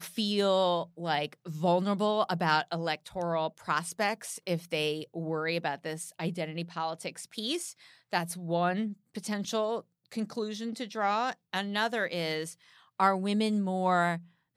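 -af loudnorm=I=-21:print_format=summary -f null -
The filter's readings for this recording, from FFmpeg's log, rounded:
Input Integrated:    -30.8 LUFS
Input True Peak:     -11.0 dBTP
Input LRA:             4.4 LU
Input Threshold:     -41.1 LUFS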